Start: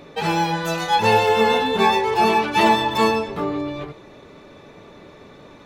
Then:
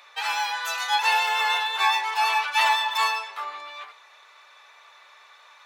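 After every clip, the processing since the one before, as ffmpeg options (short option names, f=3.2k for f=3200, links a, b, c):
-af "highpass=f=970:w=0.5412,highpass=f=970:w=1.3066"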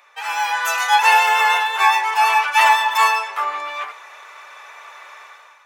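-af "equalizer=f=4k:w=2.3:g=-10.5,dynaudnorm=f=130:g=7:m=13dB"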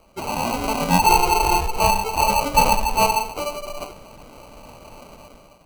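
-filter_complex "[0:a]acrossover=split=1200|5100[a][b][c];[b]aexciter=amount=3.3:drive=9:freq=2.8k[d];[a][d][c]amix=inputs=3:normalize=0,acrusher=samples=25:mix=1:aa=0.000001,volume=-5dB"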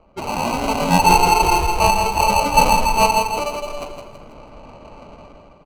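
-filter_complex "[0:a]adynamicsmooth=sensitivity=5:basefreq=2k,asplit=2[a][b];[b]aecho=0:1:163|326|489|652|815:0.473|0.203|0.0875|0.0376|0.0162[c];[a][c]amix=inputs=2:normalize=0,volume=2dB"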